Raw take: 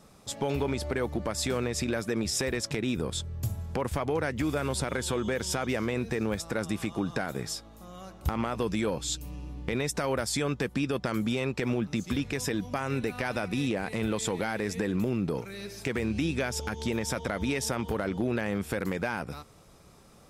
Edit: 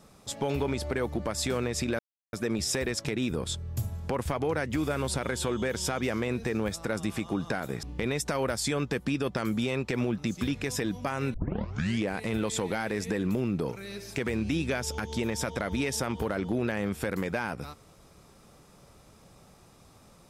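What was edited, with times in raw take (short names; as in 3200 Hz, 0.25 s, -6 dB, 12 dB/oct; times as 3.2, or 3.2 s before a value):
1.99 insert silence 0.34 s
7.49–9.52 cut
13.03 tape start 0.72 s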